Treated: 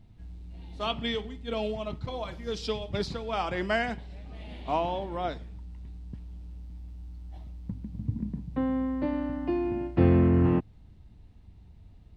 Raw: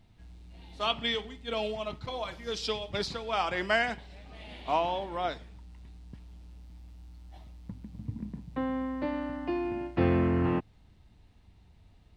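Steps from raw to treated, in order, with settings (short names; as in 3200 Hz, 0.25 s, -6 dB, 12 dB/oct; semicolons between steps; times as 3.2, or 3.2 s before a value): low shelf 470 Hz +10.5 dB; gain -3.5 dB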